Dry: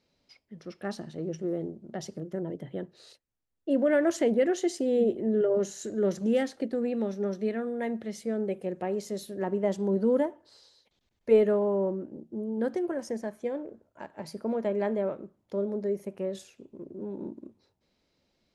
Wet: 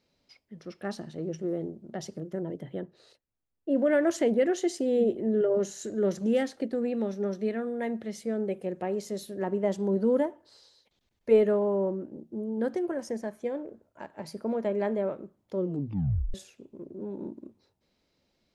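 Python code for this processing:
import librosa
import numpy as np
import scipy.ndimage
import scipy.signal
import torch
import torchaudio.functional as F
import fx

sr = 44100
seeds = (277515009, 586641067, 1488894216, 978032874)

y = fx.high_shelf(x, sr, hz=fx.line((2.79, 3700.0), (3.75, 2000.0)), db=-10.5, at=(2.79, 3.75), fade=0.02)
y = fx.edit(y, sr, fx.tape_stop(start_s=15.55, length_s=0.79), tone=tone)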